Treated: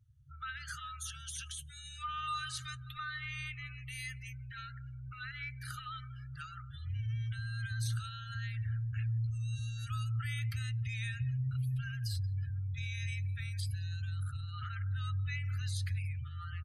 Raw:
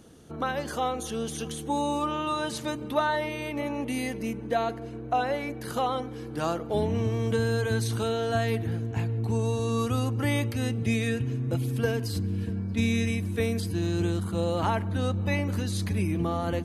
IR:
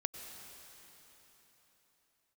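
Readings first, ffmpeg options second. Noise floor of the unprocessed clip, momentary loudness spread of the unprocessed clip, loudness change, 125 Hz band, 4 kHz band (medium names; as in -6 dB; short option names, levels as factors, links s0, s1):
-38 dBFS, 5 LU, -10.0 dB, -6.0 dB, -7.5 dB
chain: -filter_complex "[0:a]alimiter=limit=0.075:level=0:latency=1:release=45,asoftclip=type=tanh:threshold=0.0708,asplit=4[s0][s1][s2][s3];[s1]adelay=179,afreqshift=41,volume=0.126[s4];[s2]adelay=358,afreqshift=82,volume=0.049[s5];[s3]adelay=537,afreqshift=123,volume=0.0191[s6];[s0][s4][s5][s6]amix=inputs=4:normalize=0,afftfilt=real='re*(1-between(b*sr/4096,140,1200))':imag='im*(1-between(b*sr/4096,140,1200))':win_size=4096:overlap=0.75,afftdn=nr=31:nf=-47,volume=0.75"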